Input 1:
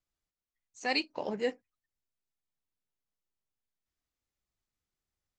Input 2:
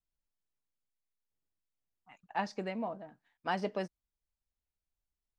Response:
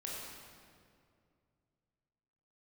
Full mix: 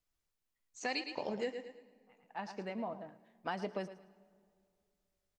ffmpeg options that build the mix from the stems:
-filter_complex "[0:a]volume=0dB,asplit=4[a][b][c][d];[b]volume=-21.5dB[e];[c]volume=-10.5dB[f];[1:a]volume=-0.5dB,asplit=3[g][h][i];[h]volume=-22.5dB[j];[i]volume=-17dB[k];[d]apad=whole_len=237489[l];[g][l]sidechaincompress=threshold=-48dB:ratio=8:attack=7:release=949[m];[2:a]atrim=start_sample=2205[n];[e][j]amix=inputs=2:normalize=0[o];[o][n]afir=irnorm=-1:irlink=0[p];[f][k]amix=inputs=2:normalize=0,aecho=0:1:110|220|330|440:1|0.29|0.0841|0.0244[q];[a][m][p][q]amix=inputs=4:normalize=0,acompressor=threshold=-34dB:ratio=5"

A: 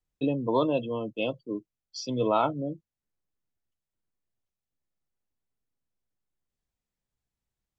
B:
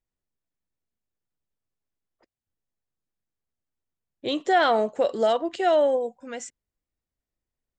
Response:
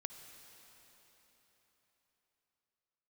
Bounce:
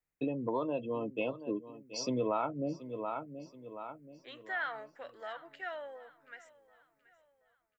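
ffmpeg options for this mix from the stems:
-filter_complex "[0:a]dynaudnorm=f=570:g=5:m=8dB,crystalizer=i=1:c=0,highshelf=f=2.7k:t=q:w=3:g=-6.5,volume=-2dB,asplit=2[a][b];[b]volume=-17.5dB[c];[1:a]bandpass=f=1.7k:t=q:w=3.2:csg=0,volume=-5.5dB,asplit=2[d][e];[e]volume=-20dB[f];[c][f]amix=inputs=2:normalize=0,aecho=0:1:728|1456|2184|2912|3640|4368:1|0.41|0.168|0.0689|0.0283|0.0116[g];[a][d][g]amix=inputs=3:normalize=0,lowshelf=f=100:g=-11,acompressor=threshold=-31dB:ratio=4"

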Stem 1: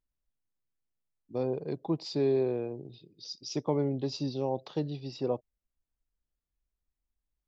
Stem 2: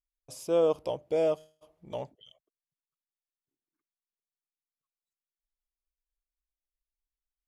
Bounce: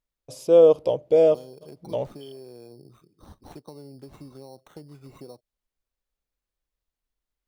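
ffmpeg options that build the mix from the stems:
-filter_complex "[0:a]acompressor=threshold=-37dB:ratio=6,acrusher=samples=9:mix=1:aa=0.000001,volume=-3.5dB[a];[1:a]equalizer=f=125:t=o:w=1:g=7,equalizer=f=250:t=o:w=1:g=4,equalizer=f=500:t=o:w=1:g=10,equalizer=f=4k:t=o:w=1:g=5,volume=0dB[b];[a][b]amix=inputs=2:normalize=0"

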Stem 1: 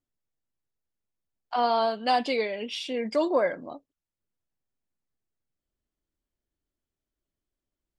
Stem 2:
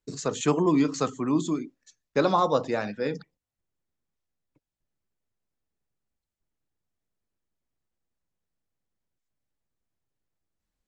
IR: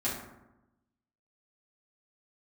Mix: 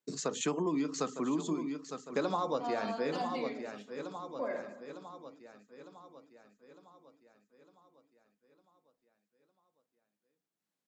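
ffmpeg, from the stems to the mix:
-filter_complex "[0:a]agate=range=-12dB:threshold=-28dB:ratio=16:detection=peak,adelay=1050,volume=-17.5dB,asplit=3[a][b][c];[a]atrim=end=3.83,asetpts=PTS-STARTPTS,afade=t=out:st=3.826:d=0.004:c=hsin[d];[b]atrim=start=3.83:end=4.39,asetpts=PTS-STARTPTS,volume=0[e];[c]atrim=start=4.39,asetpts=PTS-STARTPTS,afade=t=in:d=0.004:c=hsin[f];[d][e][f]concat=n=3:v=0:a=1,asplit=2[g][h];[h]volume=-3dB[i];[1:a]highpass=f=160:w=0.5412,highpass=f=160:w=1.3066,volume=-2.5dB,asplit=2[j][k];[k]volume=-13dB[l];[2:a]atrim=start_sample=2205[m];[i][m]afir=irnorm=-1:irlink=0[n];[l]aecho=0:1:905|1810|2715|3620|4525|5430|6335|7240:1|0.53|0.281|0.149|0.0789|0.0418|0.0222|0.0117[o];[g][j][n][o]amix=inputs=4:normalize=0,acompressor=threshold=-30dB:ratio=4"

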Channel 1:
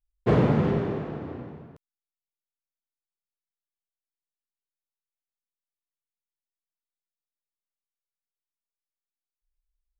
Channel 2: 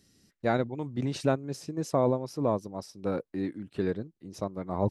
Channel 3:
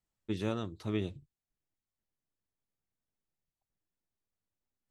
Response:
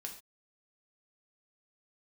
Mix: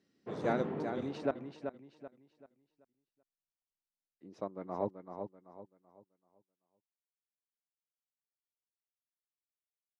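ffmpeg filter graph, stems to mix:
-filter_complex "[0:a]highpass=210,volume=-12dB[a];[1:a]highpass=240,volume=-5dB,asplit=3[b][c][d];[b]atrim=end=1.31,asetpts=PTS-STARTPTS,afade=t=out:st=1.306:d=0.004:c=hsin[e];[c]atrim=start=1.31:end=4.2,asetpts=PTS-STARTPTS,volume=0[f];[d]atrim=start=4.2,asetpts=PTS-STARTPTS,afade=t=in:d=0.004:c=hsin[g];[e][f][g]concat=n=3:v=0:a=1,asplit=3[h][i][j];[i]volume=-7dB[k];[2:a]aexciter=amount=14.8:drive=6.7:freq=3.9k,volume=-18dB[l];[j]apad=whole_len=440846[m];[a][m]sidechaingate=range=-7dB:threshold=-58dB:ratio=16:detection=peak[n];[k]aecho=0:1:384|768|1152|1536|1920:1|0.33|0.109|0.0359|0.0119[o];[n][h][l][o]amix=inputs=4:normalize=0,adynamicsmooth=sensitivity=1.5:basefreq=2.8k"

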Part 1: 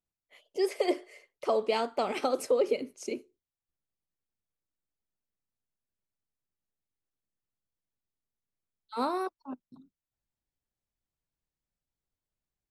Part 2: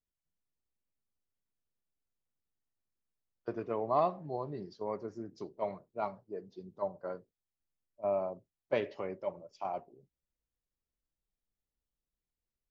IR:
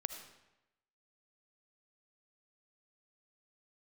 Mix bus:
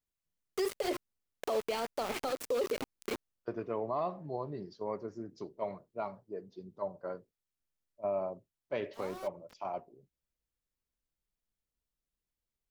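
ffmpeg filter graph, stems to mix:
-filter_complex "[0:a]bandreject=f=50:t=h:w=6,bandreject=f=100:t=h:w=6,bandreject=f=150:t=h:w=6,bandreject=f=200:t=h:w=6,bandreject=f=250:t=h:w=6,bandreject=f=300:t=h:w=6,bandreject=f=350:t=h:w=6,bandreject=f=400:t=h:w=6,aeval=exprs='val(0)*gte(abs(val(0)),0.0237)':c=same,volume=1dB[a];[1:a]bandreject=f=780:w=20,volume=0dB,asplit=2[b][c];[c]apad=whole_len=560296[d];[a][d]sidechaincompress=threshold=-46dB:ratio=16:attack=22:release=968[e];[e][b]amix=inputs=2:normalize=0,alimiter=level_in=0.5dB:limit=-24dB:level=0:latency=1:release=73,volume=-0.5dB"

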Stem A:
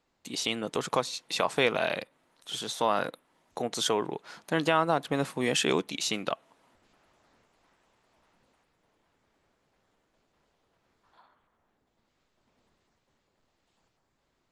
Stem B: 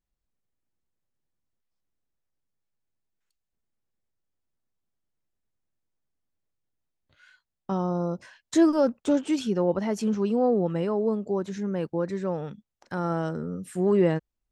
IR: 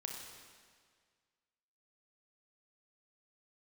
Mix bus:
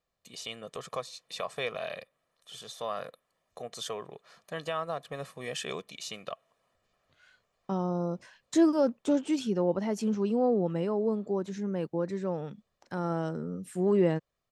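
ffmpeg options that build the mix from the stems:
-filter_complex "[0:a]aecho=1:1:1.7:0.65,volume=-10.5dB[a];[1:a]highpass=100,equalizer=f=1.5k:w=1.5:g=-2.5,volume=-3dB[b];[a][b]amix=inputs=2:normalize=0"

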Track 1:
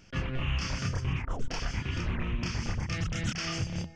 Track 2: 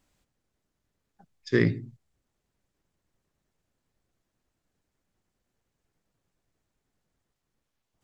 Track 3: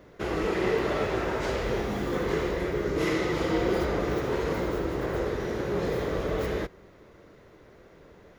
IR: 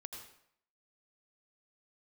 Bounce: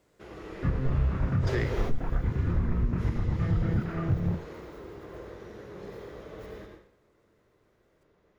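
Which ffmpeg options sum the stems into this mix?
-filter_complex "[0:a]lowpass=f=1.6k:w=0.5412,lowpass=f=1.6k:w=1.3066,lowshelf=f=380:g=8.5,adelay=500,volume=0dB[a];[1:a]highpass=370,volume=0dB,asplit=2[b][c];[2:a]volume=-2.5dB,asplit=2[d][e];[e]volume=-9dB[f];[c]apad=whole_len=369568[g];[d][g]sidechaingate=range=-33dB:threshold=-50dB:ratio=16:detection=peak[h];[3:a]atrim=start_sample=2205[i];[f][i]afir=irnorm=-1:irlink=0[j];[a][b][h][j]amix=inputs=4:normalize=0,alimiter=limit=-17dB:level=0:latency=1:release=345"

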